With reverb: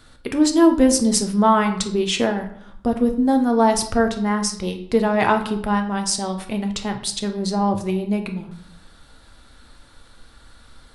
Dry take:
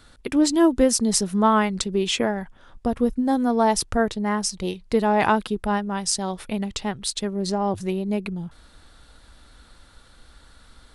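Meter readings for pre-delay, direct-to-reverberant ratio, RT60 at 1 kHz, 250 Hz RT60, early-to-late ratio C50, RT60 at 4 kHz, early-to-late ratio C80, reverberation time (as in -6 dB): 8 ms, 5.0 dB, 0.65 s, 0.85 s, 10.0 dB, 0.50 s, 14.0 dB, 0.65 s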